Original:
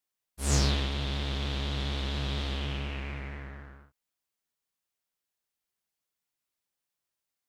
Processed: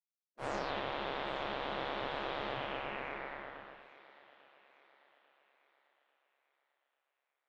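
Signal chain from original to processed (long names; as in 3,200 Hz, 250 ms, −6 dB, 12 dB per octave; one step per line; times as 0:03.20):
low-pass filter 1,900 Hz 12 dB per octave
gate on every frequency bin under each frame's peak −20 dB weak
tilt shelving filter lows +3.5 dB, about 1,100 Hz
brickwall limiter −31 dBFS, peak gain reduction 8 dB
feedback echo with a high-pass in the loop 844 ms, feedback 46%, high-pass 300 Hz, level −17 dB
level +5 dB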